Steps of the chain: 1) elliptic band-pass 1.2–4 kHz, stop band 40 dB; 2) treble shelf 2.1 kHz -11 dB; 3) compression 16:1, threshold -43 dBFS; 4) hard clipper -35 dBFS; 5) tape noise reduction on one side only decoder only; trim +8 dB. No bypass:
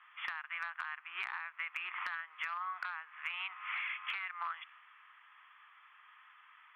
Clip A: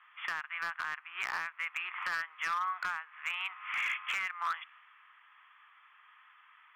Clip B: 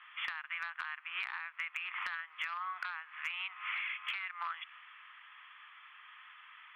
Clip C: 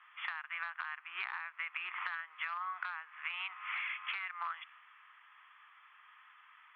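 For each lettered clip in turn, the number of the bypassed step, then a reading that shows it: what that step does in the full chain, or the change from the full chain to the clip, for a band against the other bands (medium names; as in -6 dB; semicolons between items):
3, mean gain reduction 2.5 dB; 2, momentary loudness spread change -5 LU; 4, distortion -27 dB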